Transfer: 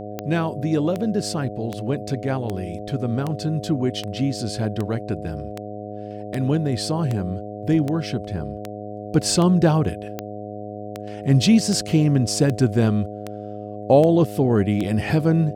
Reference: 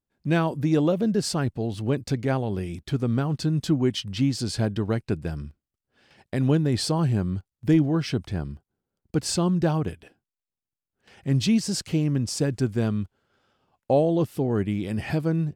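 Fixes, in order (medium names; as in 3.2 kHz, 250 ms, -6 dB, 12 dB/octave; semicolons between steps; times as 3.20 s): de-click; de-hum 104.1 Hz, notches 7; trim 0 dB, from 8.91 s -6 dB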